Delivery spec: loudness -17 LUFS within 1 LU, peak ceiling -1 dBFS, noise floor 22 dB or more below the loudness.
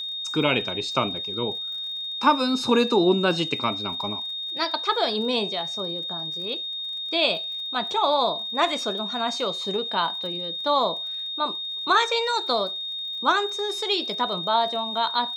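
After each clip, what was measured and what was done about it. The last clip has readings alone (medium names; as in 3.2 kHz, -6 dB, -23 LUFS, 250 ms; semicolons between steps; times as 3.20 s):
tick rate 47 per s; steady tone 3.7 kHz; tone level -29 dBFS; loudness -24.0 LUFS; peak level -6.5 dBFS; loudness target -17.0 LUFS
-> de-click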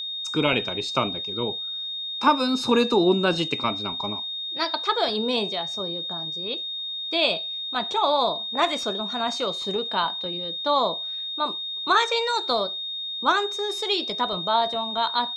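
tick rate 0 per s; steady tone 3.7 kHz; tone level -29 dBFS
-> band-stop 3.7 kHz, Q 30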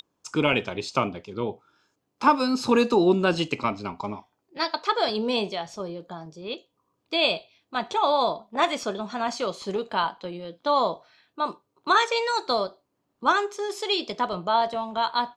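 steady tone not found; loudness -25.5 LUFS; peak level -6.5 dBFS; loudness target -17.0 LUFS
-> trim +8.5 dB; peak limiter -1 dBFS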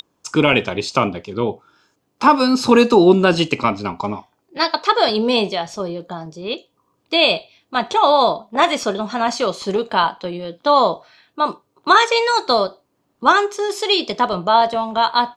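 loudness -17.5 LUFS; peak level -1.0 dBFS; noise floor -68 dBFS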